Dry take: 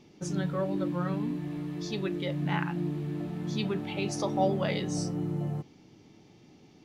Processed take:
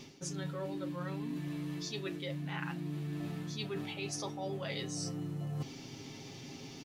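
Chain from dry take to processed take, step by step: treble shelf 2 kHz +9.5 dB; comb 7.5 ms, depth 60%; reverse; compression 12:1, threshold -42 dBFS, peak gain reduction 22.5 dB; reverse; trim +6 dB

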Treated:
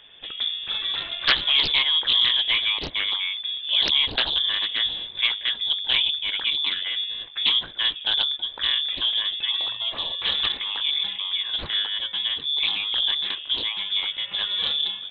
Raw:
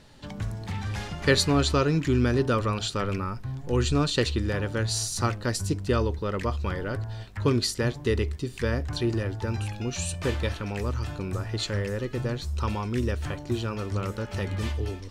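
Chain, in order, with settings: peaking EQ 430 Hz -10.5 dB 0.37 oct; frequency inversion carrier 3.5 kHz; loudspeaker Doppler distortion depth 0.58 ms; trim +3 dB

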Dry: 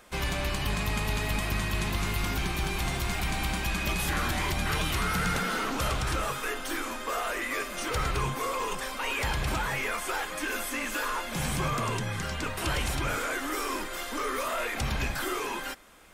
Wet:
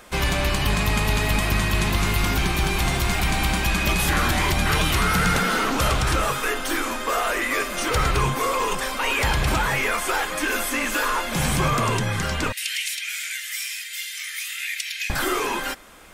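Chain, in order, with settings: 12.52–15.10 s: steep high-pass 1.9 kHz 48 dB/octave; trim +8 dB

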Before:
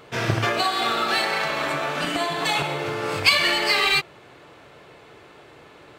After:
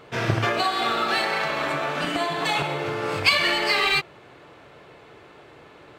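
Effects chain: treble shelf 4.6 kHz -6 dB

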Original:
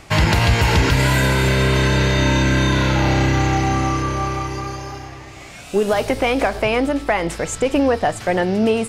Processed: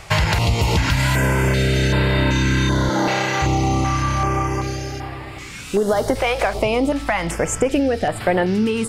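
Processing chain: 2.89–3.42 s: high-pass 180 Hz 24 dB/octave; compression, threshold -18 dBFS, peak gain reduction 7.5 dB; step-sequenced notch 2.6 Hz 270–6200 Hz; trim +4.5 dB

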